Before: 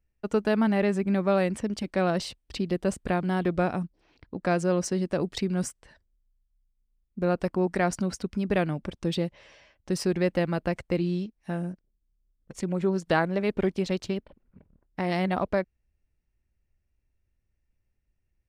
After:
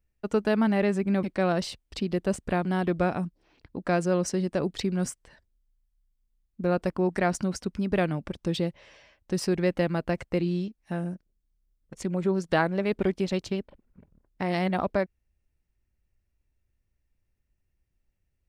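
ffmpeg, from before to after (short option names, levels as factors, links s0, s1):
-filter_complex "[0:a]asplit=2[s0][s1];[s0]atrim=end=1.232[s2];[s1]atrim=start=1.808[s3];[s2][s3]acrossfade=d=0.004:c1=hsin:c2=hsin"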